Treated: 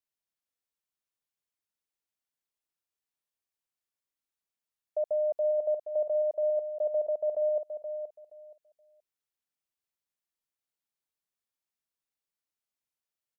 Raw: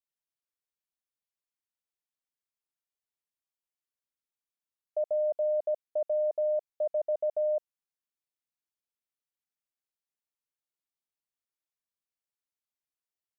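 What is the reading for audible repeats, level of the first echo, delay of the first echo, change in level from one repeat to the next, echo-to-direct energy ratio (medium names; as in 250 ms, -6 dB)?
2, -8.5 dB, 474 ms, -14.0 dB, -8.5 dB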